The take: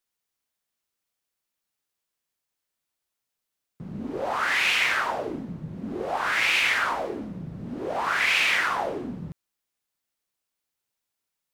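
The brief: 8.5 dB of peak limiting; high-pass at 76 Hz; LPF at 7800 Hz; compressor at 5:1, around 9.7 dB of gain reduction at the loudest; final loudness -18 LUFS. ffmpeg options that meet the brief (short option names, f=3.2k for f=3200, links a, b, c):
-af "highpass=76,lowpass=7.8k,acompressor=threshold=-30dB:ratio=5,volume=18.5dB,alimiter=limit=-10dB:level=0:latency=1"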